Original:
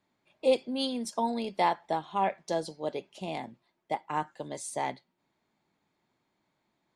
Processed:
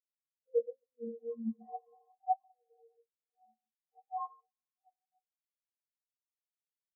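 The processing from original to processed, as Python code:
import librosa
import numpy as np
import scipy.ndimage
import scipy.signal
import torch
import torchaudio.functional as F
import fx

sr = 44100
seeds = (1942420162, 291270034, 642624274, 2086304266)

p1 = fx.spec_trails(x, sr, decay_s=2.65)
p2 = fx.low_shelf(p1, sr, hz=170.0, db=-3.0)
p3 = fx.stiff_resonator(p2, sr, f0_hz=220.0, decay_s=0.43, stiffness=0.03)
p4 = fx.quant_dither(p3, sr, seeds[0], bits=6, dither='none')
p5 = p3 + (p4 * librosa.db_to_amplitude(-4.0))
p6 = fx.high_shelf(p5, sr, hz=2800.0, db=-12.0)
p7 = p6 + 10.0 ** (-7.0 / 20.0) * np.pad(p6, (int(140 * sr / 1000.0), 0))[:len(p6)]
p8 = fx.spectral_expand(p7, sr, expansion=4.0)
y = p8 * librosa.db_to_amplitude(3.0)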